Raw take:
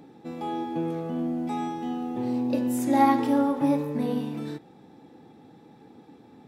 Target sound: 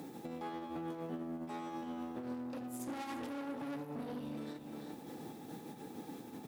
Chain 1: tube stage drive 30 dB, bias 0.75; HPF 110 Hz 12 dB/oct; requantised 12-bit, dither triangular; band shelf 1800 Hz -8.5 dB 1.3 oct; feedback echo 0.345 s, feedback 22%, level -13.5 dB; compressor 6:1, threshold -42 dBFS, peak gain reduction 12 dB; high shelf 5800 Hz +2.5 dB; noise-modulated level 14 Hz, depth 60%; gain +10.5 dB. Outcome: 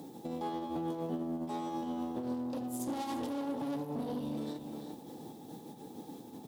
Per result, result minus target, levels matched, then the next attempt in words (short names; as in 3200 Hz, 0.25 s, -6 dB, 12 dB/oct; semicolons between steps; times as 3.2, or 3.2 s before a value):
2000 Hz band -8.0 dB; compressor: peak gain reduction -5.5 dB
tube stage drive 30 dB, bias 0.75; HPF 110 Hz 12 dB/oct; requantised 12-bit, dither triangular; feedback echo 0.345 s, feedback 22%, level -13.5 dB; compressor 6:1, threshold -42 dBFS, peak gain reduction 12 dB; high shelf 5800 Hz +2.5 dB; noise-modulated level 14 Hz, depth 60%; gain +10.5 dB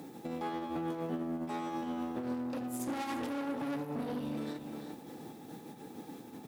compressor: peak gain reduction -5.5 dB
tube stage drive 30 dB, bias 0.75; HPF 110 Hz 12 dB/oct; requantised 12-bit, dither triangular; feedback echo 0.345 s, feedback 22%, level -13.5 dB; compressor 6:1, threshold -48.5 dBFS, peak gain reduction 17.5 dB; high shelf 5800 Hz +2.5 dB; noise-modulated level 14 Hz, depth 60%; gain +10.5 dB